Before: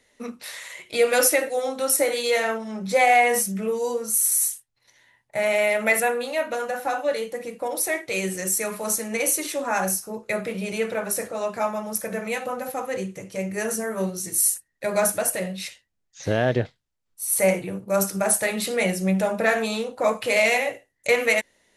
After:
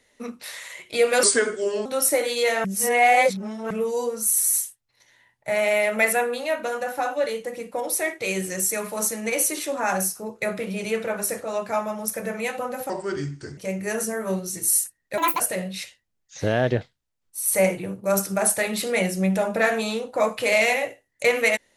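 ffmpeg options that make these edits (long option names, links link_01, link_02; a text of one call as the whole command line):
ffmpeg -i in.wav -filter_complex "[0:a]asplit=9[link_01][link_02][link_03][link_04][link_05][link_06][link_07][link_08][link_09];[link_01]atrim=end=1.234[link_10];[link_02]atrim=start=1.23:end=1.73,asetpts=PTS-STARTPTS,asetrate=35280,aresample=44100,atrim=end_sample=27562,asetpts=PTS-STARTPTS[link_11];[link_03]atrim=start=1.726:end=2.522[link_12];[link_04]atrim=start=2.518:end=3.582,asetpts=PTS-STARTPTS,areverse[link_13];[link_05]atrim=start=3.578:end=12.774[link_14];[link_06]atrim=start=12.77:end=13.28,asetpts=PTS-STARTPTS,asetrate=33075,aresample=44100[link_15];[link_07]atrim=start=13.276:end=14.884[link_16];[link_08]atrim=start=14.88:end=15.24,asetpts=PTS-STARTPTS,asetrate=71001,aresample=44100[link_17];[link_09]atrim=start=15.236[link_18];[link_10][link_11]acrossfade=duration=0.004:curve1=hsin:curve2=hsin[link_19];[link_19][link_12]acrossfade=duration=0.004:curve1=hsin:curve2=hsin[link_20];[link_20][link_13]acrossfade=duration=0.004:curve1=hsin:curve2=hsin[link_21];[link_21][link_14]acrossfade=duration=0.004:curve1=hsin:curve2=hsin[link_22];[link_22][link_15]acrossfade=duration=0.004:curve1=hsin:curve2=hsin[link_23];[link_23][link_16]acrossfade=duration=0.004:curve1=hsin:curve2=hsin[link_24];[link_24][link_17]acrossfade=duration=0.004:curve1=hsin:curve2=hsin[link_25];[link_25][link_18]acrossfade=duration=0.004:curve1=hsin:curve2=hsin" out.wav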